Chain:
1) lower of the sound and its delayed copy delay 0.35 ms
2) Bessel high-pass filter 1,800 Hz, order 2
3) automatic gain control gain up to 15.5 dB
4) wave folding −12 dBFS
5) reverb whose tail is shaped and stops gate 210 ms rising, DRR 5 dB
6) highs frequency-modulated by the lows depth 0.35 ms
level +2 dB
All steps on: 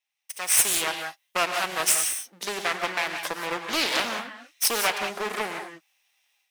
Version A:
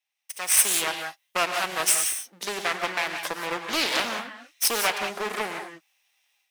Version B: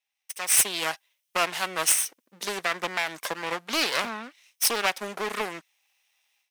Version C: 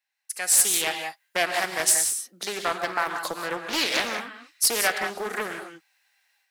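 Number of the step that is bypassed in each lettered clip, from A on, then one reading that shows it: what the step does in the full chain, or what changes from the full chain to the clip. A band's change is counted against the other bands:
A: 4, distortion level −18 dB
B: 5, change in momentary loudness spread +1 LU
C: 1, 8 kHz band +2.0 dB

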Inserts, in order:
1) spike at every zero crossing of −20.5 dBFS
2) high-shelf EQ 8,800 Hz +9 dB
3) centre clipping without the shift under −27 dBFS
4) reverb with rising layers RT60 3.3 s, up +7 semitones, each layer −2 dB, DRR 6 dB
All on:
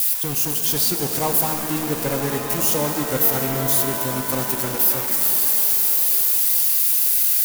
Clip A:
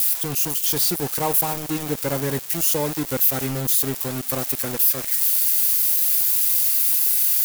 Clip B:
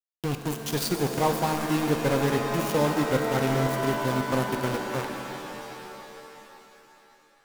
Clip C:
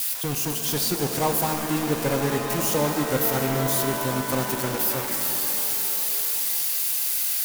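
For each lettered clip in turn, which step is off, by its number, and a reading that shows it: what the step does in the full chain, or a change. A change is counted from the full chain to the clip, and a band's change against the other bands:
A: 4, change in momentary loudness spread +1 LU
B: 1, distortion level 0 dB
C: 2, 8 kHz band −4.5 dB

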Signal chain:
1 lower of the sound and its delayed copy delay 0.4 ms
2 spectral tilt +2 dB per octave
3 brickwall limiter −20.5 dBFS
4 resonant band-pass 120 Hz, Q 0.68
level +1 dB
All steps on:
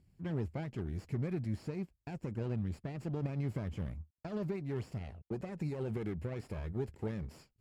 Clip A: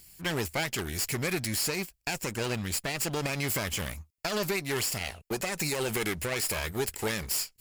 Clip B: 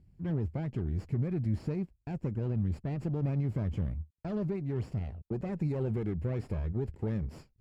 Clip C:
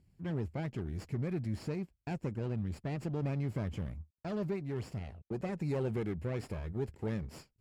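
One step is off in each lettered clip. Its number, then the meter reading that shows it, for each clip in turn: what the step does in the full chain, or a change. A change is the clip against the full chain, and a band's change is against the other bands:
4, 4 kHz band +19.0 dB
2, 2 kHz band −4.5 dB
3, average gain reduction 2.0 dB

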